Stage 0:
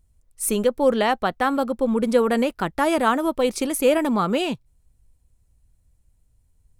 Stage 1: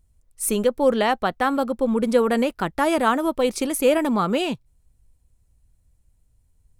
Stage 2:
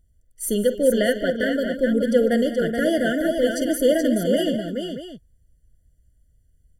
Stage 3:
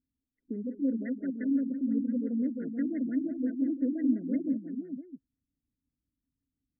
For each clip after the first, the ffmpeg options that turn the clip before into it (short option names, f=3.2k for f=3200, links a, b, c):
-af anull
-af "aecho=1:1:49|150|201|426|630:0.178|0.133|0.2|0.531|0.237,afftfilt=real='re*eq(mod(floor(b*sr/1024/710),2),0)':imag='im*eq(mod(floor(b*sr/1024/710),2),0)':win_size=1024:overlap=0.75"
-filter_complex "[0:a]asplit=3[a][b][c];[a]bandpass=f=270:t=q:w=8,volume=0dB[d];[b]bandpass=f=2.29k:t=q:w=8,volume=-6dB[e];[c]bandpass=f=3.01k:t=q:w=8,volume=-9dB[f];[d][e][f]amix=inputs=3:normalize=0,afftfilt=real='re*lt(b*sr/1024,290*pow(2200/290,0.5+0.5*sin(2*PI*5.8*pts/sr)))':imag='im*lt(b*sr/1024,290*pow(2200/290,0.5+0.5*sin(2*PI*5.8*pts/sr)))':win_size=1024:overlap=0.75"